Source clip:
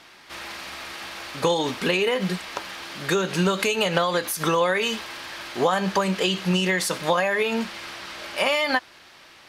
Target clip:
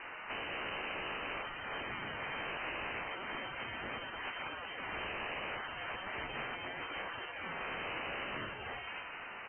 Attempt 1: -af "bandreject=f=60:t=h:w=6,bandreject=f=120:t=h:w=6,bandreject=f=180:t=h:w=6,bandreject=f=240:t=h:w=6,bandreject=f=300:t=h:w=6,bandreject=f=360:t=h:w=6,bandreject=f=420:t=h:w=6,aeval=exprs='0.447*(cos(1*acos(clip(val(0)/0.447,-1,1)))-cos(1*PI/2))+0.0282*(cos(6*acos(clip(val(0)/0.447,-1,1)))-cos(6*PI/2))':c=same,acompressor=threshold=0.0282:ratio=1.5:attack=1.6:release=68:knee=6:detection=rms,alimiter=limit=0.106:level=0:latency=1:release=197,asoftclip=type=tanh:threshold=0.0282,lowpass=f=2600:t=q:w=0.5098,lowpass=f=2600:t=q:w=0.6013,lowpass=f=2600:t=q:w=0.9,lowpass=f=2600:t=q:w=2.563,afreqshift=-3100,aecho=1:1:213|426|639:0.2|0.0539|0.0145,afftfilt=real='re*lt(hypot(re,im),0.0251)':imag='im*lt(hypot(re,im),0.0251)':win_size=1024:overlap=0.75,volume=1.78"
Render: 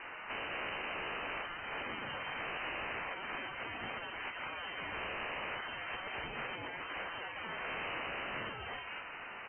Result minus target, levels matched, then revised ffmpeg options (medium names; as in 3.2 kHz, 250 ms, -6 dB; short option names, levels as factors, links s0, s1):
saturation: distortion +7 dB
-af "bandreject=f=60:t=h:w=6,bandreject=f=120:t=h:w=6,bandreject=f=180:t=h:w=6,bandreject=f=240:t=h:w=6,bandreject=f=300:t=h:w=6,bandreject=f=360:t=h:w=6,bandreject=f=420:t=h:w=6,aeval=exprs='0.447*(cos(1*acos(clip(val(0)/0.447,-1,1)))-cos(1*PI/2))+0.0282*(cos(6*acos(clip(val(0)/0.447,-1,1)))-cos(6*PI/2))':c=same,acompressor=threshold=0.0282:ratio=1.5:attack=1.6:release=68:knee=6:detection=rms,alimiter=limit=0.106:level=0:latency=1:release=197,asoftclip=type=tanh:threshold=0.0596,lowpass=f=2600:t=q:w=0.5098,lowpass=f=2600:t=q:w=0.6013,lowpass=f=2600:t=q:w=0.9,lowpass=f=2600:t=q:w=2.563,afreqshift=-3100,aecho=1:1:213|426|639:0.2|0.0539|0.0145,afftfilt=real='re*lt(hypot(re,im),0.0251)':imag='im*lt(hypot(re,im),0.0251)':win_size=1024:overlap=0.75,volume=1.78"